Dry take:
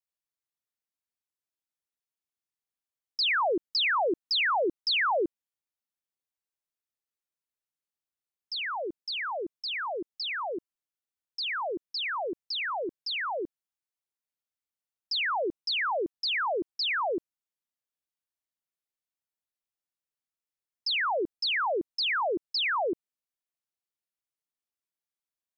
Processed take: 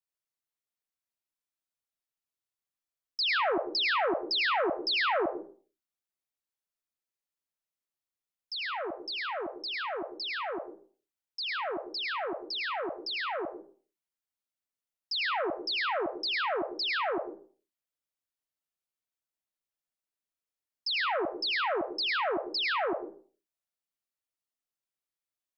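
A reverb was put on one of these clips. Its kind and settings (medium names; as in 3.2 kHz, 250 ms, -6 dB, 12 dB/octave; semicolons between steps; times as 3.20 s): algorithmic reverb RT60 0.43 s, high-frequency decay 0.6×, pre-delay 60 ms, DRR 5.5 dB; trim -2.5 dB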